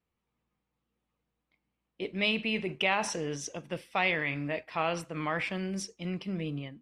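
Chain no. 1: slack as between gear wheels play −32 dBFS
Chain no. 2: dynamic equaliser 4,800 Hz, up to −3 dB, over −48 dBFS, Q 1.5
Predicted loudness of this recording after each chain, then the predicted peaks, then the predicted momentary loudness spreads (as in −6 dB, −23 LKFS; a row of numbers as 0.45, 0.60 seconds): −33.0, −32.5 LKFS; −16.0, −15.5 dBFS; 11, 9 LU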